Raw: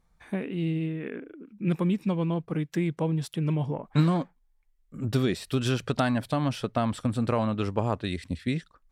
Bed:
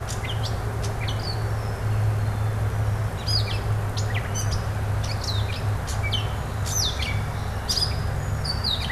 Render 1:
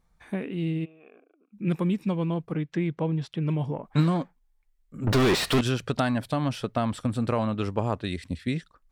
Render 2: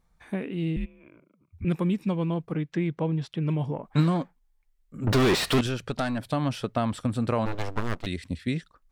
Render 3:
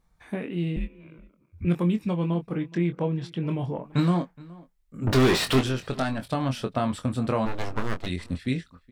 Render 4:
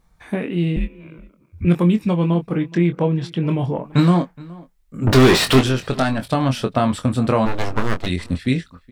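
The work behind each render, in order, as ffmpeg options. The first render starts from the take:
ffmpeg -i in.wav -filter_complex "[0:a]asplit=3[link_01][link_02][link_03];[link_01]afade=type=out:start_time=0.84:duration=0.02[link_04];[link_02]asplit=3[link_05][link_06][link_07];[link_05]bandpass=frequency=730:width_type=q:width=8,volume=0dB[link_08];[link_06]bandpass=frequency=1090:width_type=q:width=8,volume=-6dB[link_09];[link_07]bandpass=frequency=2440:width_type=q:width=8,volume=-9dB[link_10];[link_08][link_09][link_10]amix=inputs=3:normalize=0,afade=type=in:start_time=0.84:duration=0.02,afade=type=out:start_time=1.52:duration=0.02[link_11];[link_03]afade=type=in:start_time=1.52:duration=0.02[link_12];[link_04][link_11][link_12]amix=inputs=3:normalize=0,asettb=1/sr,asplit=3[link_13][link_14][link_15];[link_13]atrim=end=2.534[link_16];[link_14]atrim=start=2.53:end=3.49,asetpts=PTS-STARTPTS,afade=type=in:duration=0.004:curve=qsin,afade=type=out:start_time=0.956:duration=0.004:curve=qsin,lowpass=4100[link_17];[link_15]atrim=start=3.486[link_18];[link_16][link_17]acrossfade=duration=0.004:curve1=hsin:curve2=qsin[link_19];[link_19][link_18]acrossfade=duration=0.004:curve1=qsin:curve2=hsin,asettb=1/sr,asplit=3[link_20][link_21][link_22];[link_20]atrim=end=5.074[link_23];[link_21]atrim=start=5.07:end=5.61,asetpts=PTS-STARTPTS,afade=type=in:duration=0.004:curve=qsin,afade=type=out:start_time=0.536:duration=0.004:curve=qsin,asplit=2[link_24][link_25];[link_25]highpass=frequency=720:poles=1,volume=40dB,asoftclip=type=tanh:threshold=-14dB[link_26];[link_24][link_26]amix=inputs=2:normalize=0,lowpass=frequency=2200:poles=1,volume=-6dB[link_27];[link_22]atrim=start=5.606[link_28];[link_23][link_27]acrossfade=duration=0.004:curve1=hsin:curve2=qsin[link_29];[link_29][link_28]acrossfade=duration=0.004:curve1=qsin:curve2=hsin" out.wav
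ffmpeg -i in.wav -filter_complex "[0:a]asettb=1/sr,asplit=3[link_01][link_02][link_03];[link_01]atrim=end=0.764[link_04];[link_02]atrim=start=0.76:end=1.65,asetpts=PTS-STARTPTS,afade=type=in:duration=0.004:curve=qsin,afade=type=out:start_time=0.886:duration=0.004:curve=qsin,afreqshift=-120[link_05];[link_03]atrim=start=1.646[link_06];[link_04][link_05]acrossfade=duration=0.004:curve1=hsin:curve2=qsin[link_07];[link_07][link_06]acrossfade=duration=0.004:curve1=qsin:curve2=hsin,asettb=1/sr,asplit=3[link_08][link_09][link_10];[link_08]atrim=end=5.664[link_11];[link_09]atrim=start=5.66:end=6.26,asetpts=PTS-STARTPTS,afade=type=in:duration=0.004:curve=qsin,afade=type=out:start_time=0.596:duration=0.004:curve=qsin,aeval=exprs='(tanh(7.08*val(0)+0.55)-tanh(0.55))/7.08':channel_layout=same[link_12];[link_10]atrim=start=6.256[link_13];[link_11][link_12]acrossfade=duration=0.004:curve1=hsin:curve2=qsin[link_14];[link_14][link_13]acrossfade=duration=0.004:curve1=qsin:curve2=hsin,asplit=3[link_15][link_16][link_17];[link_15]afade=type=out:start_time=7.45:duration=0.02[link_18];[link_16]aeval=exprs='abs(val(0))':channel_layout=same,afade=type=in:start_time=7.45:duration=0.02,afade=type=out:start_time=8.05:duration=0.02[link_19];[link_17]afade=type=in:start_time=8.05:duration=0.02[link_20];[link_18][link_19][link_20]amix=inputs=3:normalize=0" out.wav
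ffmpeg -i in.wav -filter_complex "[0:a]asplit=2[link_01][link_02];[link_02]adelay=23,volume=-7dB[link_03];[link_01][link_03]amix=inputs=2:normalize=0,asplit=2[link_04][link_05];[link_05]adelay=419.8,volume=-22dB,highshelf=frequency=4000:gain=-9.45[link_06];[link_04][link_06]amix=inputs=2:normalize=0" out.wav
ffmpeg -i in.wav -af "volume=8dB" out.wav

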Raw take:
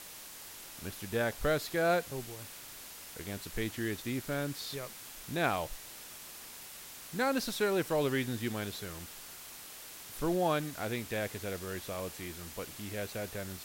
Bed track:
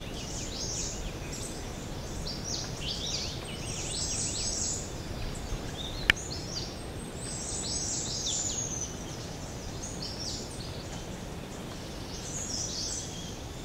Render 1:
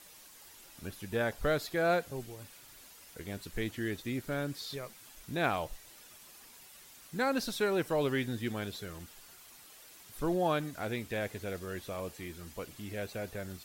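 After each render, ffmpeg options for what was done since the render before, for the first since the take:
ffmpeg -i in.wav -af "afftdn=noise_reduction=9:noise_floor=-49" out.wav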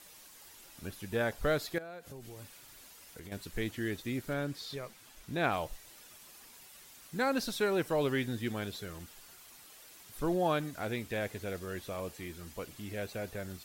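ffmpeg -i in.wav -filter_complex "[0:a]asettb=1/sr,asplit=3[link_01][link_02][link_03];[link_01]atrim=end=1.784[link_04];[link_02]atrim=start=1.78:end=3.32,asetpts=PTS-STARTPTS,afade=type=in:duration=0.004:curve=qsin,afade=type=out:start_time=1.536:duration=0.004:curve=qsin,acompressor=threshold=-42dB:ratio=16:attack=3.2:release=140:knee=1:detection=peak[link_05];[link_03]atrim=start=3.316[link_06];[link_04][link_05]acrossfade=duration=0.004:curve1=hsin:curve2=qsin[link_07];[link_07][link_06]acrossfade=duration=0.004:curve1=qsin:curve2=hsin,asettb=1/sr,asplit=3[link_08][link_09][link_10];[link_08]atrim=end=4.334[link_11];[link_09]atrim=start=4.33:end=5.52,asetpts=PTS-STARTPTS,afade=type=in:duration=0.004:curve=qsin,afade=type=out:start_time=1.186:duration=0.004:curve=qsin,highshelf=frequency=6600:gain=-5.5[link_12];[link_10]atrim=start=5.516[link_13];[link_11][link_12]acrossfade=duration=0.004:curve1=hsin:curve2=qsin[link_14];[link_14][link_13]acrossfade=duration=0.004:curve1=qsin:curve2=hsin" out.wav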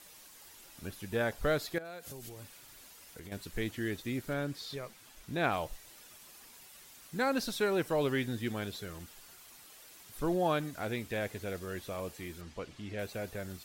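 ffmpeg -i in.wav -filter_complex "[0:a]asplit=3[link_01][link_02][link_03];[link_01]afade=type=out:start_time=1.84:duration=0.02[link_04];[link_02]highshelf=frequency=3000:gain=9.5,afade=type=in:start_time=1.84:duration=0.02,afade=type=out:start_time=2.28:duration=0.02[link_05];[link_03]afade=type=in:start_time=2.28:duration=0.02[link_06];[link_04][link_05][link_06]amix=inputs=3:normalize=0,asettb=1/sr,asplit=3[link_07][link_08][link_09];[link_07]atrim=end=12.414[link_10];[link_08]atrim=start=12.41:end=12.99,asetpts=PTS-STARTPTS,afade=type=in:duration=0.004:curve=qsin,afade=type=out:start_time=0.576:duration=0.004:curve=qsin,lowpass=5400[link_11];[link_09]atrim=start=12.986[link_12];[link_10][link_11]acrossfade=duration=0.004:curve1=hsin:curve2=qsin[link_13];[link_13][link_12]acrossfade=duration=0.004:curve1=qsin:curve2=hsin" out.wav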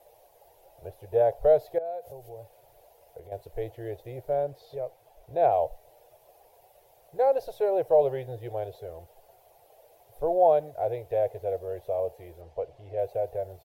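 ffmpeg -i in.wav -af "firequalizer=gain_entry='entry(130,0);entry(220,-28);entry(320,-7);entry(470,11);entry(700,14);entry(1200,-14);entry(2400,-12);entry(4100,-15);entry(7800,-18);entry(12000,-8)':delay=0.05:min_phase=1" out.wav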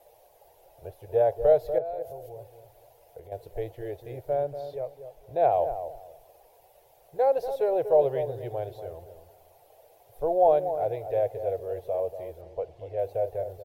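ffmpeg -i in.wav -filter_complex "[0:a]asplit=2[link_01][link_02];[link_02]adelay=239,lowpass=frequency=900:poles=1,volume=-8.5dB,asplit=2[link_03][link_04];[link_04]adelay=239,lowpass=frequency=900:poles=1,volume=0.28,asplit=2[link_05][link_06];[link_06]adelay=239,lowpass=frequency=900:poles=1,volume=0.28[link_07];[link_01][link_03][link_05][link_07]amix=inputs=4:normalize=0" out.wav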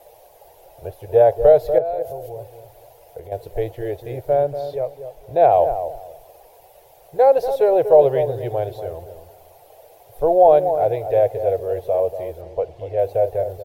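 ffmpeg -i in.wav -af "volume=9.5dB,alimiter=limit=-3dB:level=0:latency=1" out.wav

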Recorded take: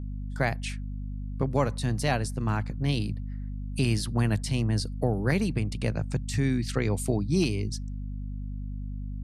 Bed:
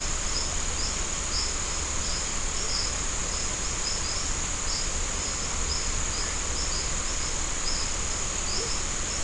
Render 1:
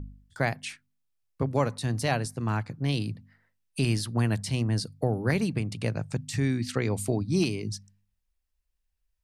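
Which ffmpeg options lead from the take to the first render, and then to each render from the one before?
ffmpeg -i in.wav -af "bandreject=frequency=50:width_type=h:width=4,bandreject=frequency=100:width_type=h:width=4,bandreject=frequency=150:width_type=h:width=4,bandreject=frequency=200:width_type=h:width=4,bandreject=frequency=250:width_type=h:width=4" out.wav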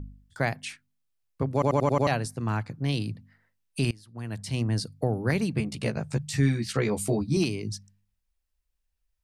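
ffmpeg -i in.wav -filter_complex "[0:a]asettb=1/sr,asplit=3[link_01][link_02][link_03];[link_01]atrim=end=5.564[link_04];[link_02]atrim=start=5.56:end=7.37,asetpts=PTS-STARTPTS,afade=type=in:duration=0.004:curve=qsin,afade=type=out:start_time=1.806:duration=0.004:curve=qsin,asplit=2[link_05][link_06];[link_06]adelay=14,volume=-2dB[link_07];[link_05][link_07]amix=inputs=2:normalize=0,atrim=end_sample=79821[link_08];[link_03]atrim=start=7.366[link_09];[link_04][link_08]acrossfade=duration=0.004:curve1=hsin:curve2=qsin[link_10];[link_10][link_09]acrossfade=duration=0.004:curve1=qsin:curve2=hsin,asplit=8[link_11][link_12][link_13][link_14][link_15][link_16][link_17][link_18];[link_11]atrim=end=1.622[link_19];[link_12]atrim=start=1.528:end=1.622[link_20];[link_13]atrim=start=1.528:end=1.622[link_21];[link_14]atrim=start=1.528:end=1.622[link_22];[link_15]atrim=start=1.528:end=1.622[link_23];[link_16]atrim=start=1.528:end=1.622[link_24];[link_17]atrim=start=2.068:end=3.91,asetpts=PTS-STARTPTS,afade=type=out:start_time=1.838:duration=0.004:curve=hsin:silence=0.0668344[link_25];[link_18]atrim=start=3.91,asetpts=PTS-STARTPTS,afade=type=in:duration=0.68:curve=qua:silence=0.0668344[link_26];[link_19][link_20]acrossfade=duration=0.004:curve1=hsin:curve2=hsin[link_27];[link_27][link_21]acrossfade=duration=0.004:curve1=hsin:curve2=hsin[link_28];[link_28][link_22]acrossfade=duration=0.004:curve1=hsin:curve2=hsin[link_29];[link_29][link_23]acrossfade=duration=0.004:curve1=hsin:curve2=hsin[link_30];[link_30][link_24]acrossfade=duration=0.004:curve1=hsin:curve2=hsin[link_31];[link_25][link_26]concat=n=2:v=0:a=1[link_32];[link_31][link_32]acrossfade=duration=0.004:curve1=hsin:curve2=hsin" out.wav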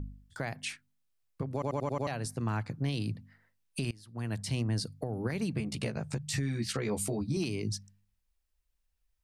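ffmpeg -i in.wav -af "acompressor=threshold=-27dB:ratio=4,alimiter=limit=-22.5dB:level=0:latency=1:release=173" out.wav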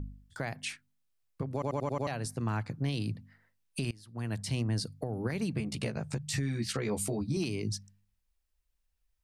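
ffmpeg -i in.wav -af anull out.wav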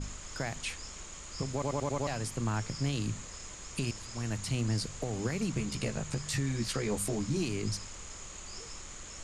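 ffmpeg -i in.wav -i bed.wav -filter_complex "[1:a]volume=-16dB[link_01];[0:a][link_01]amix=inputs=2:normalize=0" out.wav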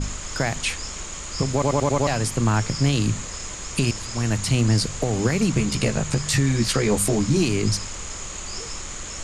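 ffmpeg -i in.wav -af "volume=12dB" out.wav

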